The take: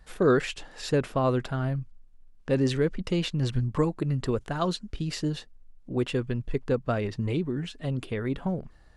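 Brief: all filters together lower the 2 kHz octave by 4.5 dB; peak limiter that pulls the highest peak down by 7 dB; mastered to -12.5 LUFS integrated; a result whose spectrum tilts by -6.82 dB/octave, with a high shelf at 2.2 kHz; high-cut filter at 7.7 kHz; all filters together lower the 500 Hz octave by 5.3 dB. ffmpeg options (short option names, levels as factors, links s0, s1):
-af "lowpass=7700,equalizer=f=500:t=o:g=-6.5,equalizer=f=2000:t=o:g=-3.5,highshelf=f=2200:g=-4,volume=10,alimiter=limit=0.891:level=0:latency=1"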